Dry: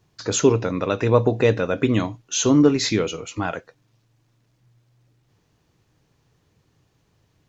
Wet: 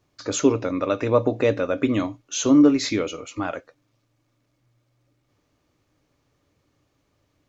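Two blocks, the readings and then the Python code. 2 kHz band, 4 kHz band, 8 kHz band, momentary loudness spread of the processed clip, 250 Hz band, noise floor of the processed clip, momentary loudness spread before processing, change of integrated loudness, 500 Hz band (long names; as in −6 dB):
−3.0 dB, −4.0 dB, can't be measured, 14 LU, +1.0 dB, −71 dBFS, 12 LU, −1.5 dB, −2.0 dB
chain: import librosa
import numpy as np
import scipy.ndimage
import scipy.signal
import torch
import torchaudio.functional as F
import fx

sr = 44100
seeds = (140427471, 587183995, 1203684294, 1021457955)

y = fx.peak_eq(x, sr, hz=170.0, db=-6.0, octaves=1.3)
y = fx.small_body(y, sr, hz=(280.0, 570.0, 1200.0, 2200.0), ring_ms=40, db=9)
y = y * 10.0 ** (-4.0 / 20.0)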